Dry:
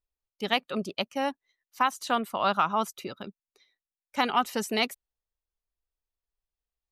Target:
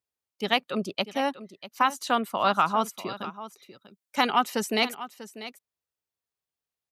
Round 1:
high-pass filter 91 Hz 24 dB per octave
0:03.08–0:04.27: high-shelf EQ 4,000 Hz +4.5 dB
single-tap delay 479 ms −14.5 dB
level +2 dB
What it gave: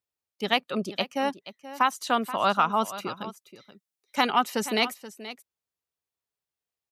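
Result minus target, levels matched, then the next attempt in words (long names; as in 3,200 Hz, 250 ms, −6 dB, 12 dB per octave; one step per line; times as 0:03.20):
echo 164 ms early
high-pass filter 91 Hz 24 dB per octave
0:03.08–0:04.27: high-shelf EQ 4,000 Hz +4.5 dB
single-tap delay 643 ms −14.5 dB
level +2 dB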